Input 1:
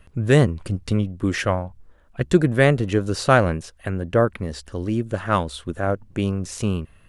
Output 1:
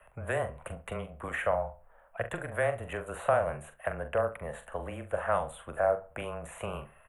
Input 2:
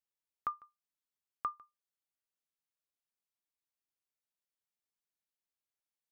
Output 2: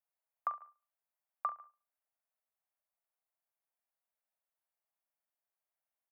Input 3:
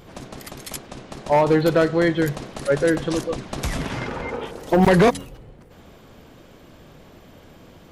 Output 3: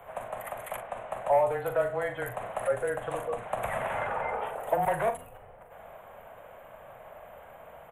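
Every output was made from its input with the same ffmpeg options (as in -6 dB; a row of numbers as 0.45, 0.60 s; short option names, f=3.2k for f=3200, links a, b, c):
-filter_complex "[0:a]afreqshift=-18,acrossover=split=82|380|4300[a][b][c][d];[a]acompressor=threshold=-38dB:ratio=4[e];[b]acompressor=threshold=-27dB:ratio=4[f];[c]acompressor=threshold=-32dB:ratio=4[g];[d]acompressor=threshold=-42dB:ratio=4[h];[e][f][g][h]amix=inputs=4:normalize=0,asuperstop=centerf=5000:order=4:qfactor=0.65,lowshelf=f=450:t=q:w=3:g=-12.5,asplit=2[i][j];[j]adelay=42,volume=-9dB[k];[i][k]amix=inputs=2:normalize=0,asplit=2[l][m];[m]adelay=69,lowpass=f=2.7k:p=1,volume=-16.5dB,asplit=2[n][o];[o]adelay=69,lowpass=f=2.7k:p=1,volume=0.34,asplit=2[p][q];[q]adelay=69,lowpass=f=2.7k:p=1,volume=0.34[r];[n][p][r]amix=inputs=3:normalize=0[s];[l][s]amix=inputs=2:normalize=0"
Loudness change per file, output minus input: -11.5, +0.5, -10.5 LU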